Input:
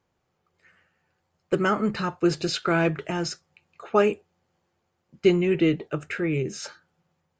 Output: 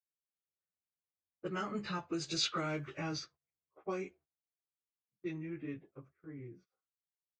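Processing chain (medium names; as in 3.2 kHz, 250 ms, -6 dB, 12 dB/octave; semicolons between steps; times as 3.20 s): frequency-domain pitch shifter -1 st; Doppler pass-by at 2.49 s, 18 m/s, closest 11 m; level-controlled noise filter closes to 780 Hz, open at -22.5 dBFS; gate -55 dBFS, range -20 dB; compression 10:1, threshold -29 dBFS, peak gain reduction 11 dB; pre-emphasis filter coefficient 0.8; trim +8.5 dB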